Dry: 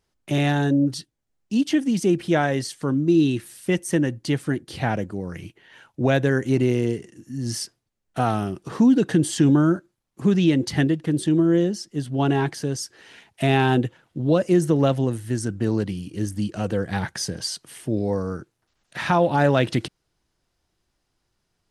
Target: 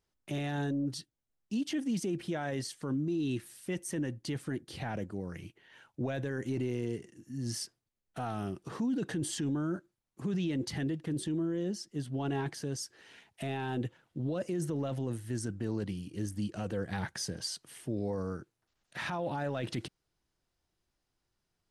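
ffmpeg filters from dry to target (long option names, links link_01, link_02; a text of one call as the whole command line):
ffmpeg -i in.wav -af "alimiter=limit=-17.5dB:level=0:latency=1:release=10,volume=-8.5dB" out.wav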